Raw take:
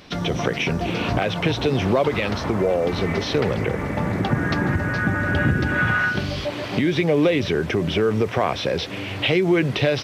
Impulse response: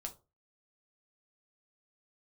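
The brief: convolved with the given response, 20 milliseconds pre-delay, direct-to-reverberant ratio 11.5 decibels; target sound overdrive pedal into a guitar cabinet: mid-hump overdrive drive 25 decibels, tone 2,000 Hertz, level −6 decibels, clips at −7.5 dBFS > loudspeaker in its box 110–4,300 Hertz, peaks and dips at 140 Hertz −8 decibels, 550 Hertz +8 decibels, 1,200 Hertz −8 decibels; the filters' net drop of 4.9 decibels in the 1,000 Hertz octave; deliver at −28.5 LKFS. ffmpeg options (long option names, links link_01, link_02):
-filter_complex "[0:a]equalizer=frequency=1000:width_type=o:gain=-6,asplit=2[link_01][link_02];[1:a]atrim=start_sample=2205,adelay=20[link_03];[link_02][link_03]afir=irnorm=-1:irlink=0,volume=-9dB[link_04];[link_01][link_04]amix=inputs=2:normalize=0,asplit=2[link_05][link_06];[link_06]highpass=frequency=720:poles=1,volume=25dB,asoftclip=type=tanh:threshold=-7.5dB[link_07];[link_05][link_07]amix=inputs=2:normalize=0,lowpass=frequency=2000:poles=1,volume=-6dB,highpass=110,equalizer=frequency=140:width_type=q:width=4:gain=-8,equalizer=frequency=550:width_type=q:width=4:gain=8,equalizer=frequency=1200:width_type=q:width=4:gain=-8,lowpass=frequency=4300:width=0.5412,lowpass=frequency=4300:width=1.3066,volume=-13.5dB"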